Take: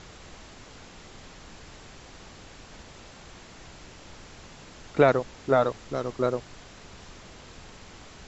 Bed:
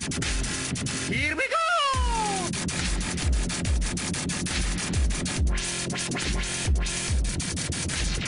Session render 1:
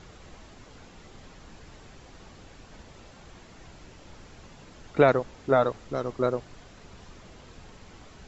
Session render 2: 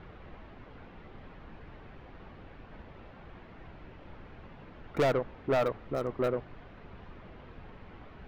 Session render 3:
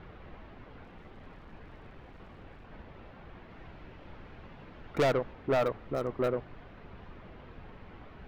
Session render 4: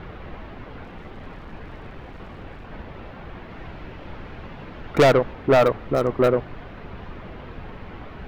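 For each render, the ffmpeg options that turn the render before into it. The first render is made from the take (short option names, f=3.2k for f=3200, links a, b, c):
-af "afftdn=nr=6:nf=-48"
-filter_complex "[0:a]acrossover=split=3000[a][b];[b]acrusher=bits=7:mix=0:aa=0.000001[c];[a][c]amix=inputs=2:normalize=0,asoftclip=type=tanh:threshold=-22dB"
-filter_complex "[0:a]asettb=1/sr,asplit=3[a][b][c];[a]atrim=end=0.844[d];[b]atrim=start=0.84:end=2.67,asetpts=PTS-STARTPTS,afade=t=in:d=0.004:c=qsin,afade=t=out:st=1.826:d=0.004:c=qsin,aeval=exprs='clip(val(0),-1,0.00422)':c=same[e];[c]atrim=start=2.666[f];[d][e]acrossfade=d=0.004:c1=hsin:c2=qsin[g];[g][f]acrossfade=d=0.004:c1=qsin:c2=hsin,asettb=1/sr,asplit=3[h][i][j];[h]atrim=end=3.504[k];[i]atrim=start=3.5:end=5.33,asetpts=PTS-STARTPTS,afade=t=in:d=0.004:c=qsin,afade=t=out:st=1.826:d=0.004:c=qsin,equalizer=f=5.3k:w=0.47:g=2.5[l];[j]atrim=start=5.326[m];[k][l]acrossfade=d=0.004:c1=hsin:c2=qsin[n];[n][m]acrossfade=d=0.004:c1=qsin:c2=hsin"
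-af "volume=11.5dB"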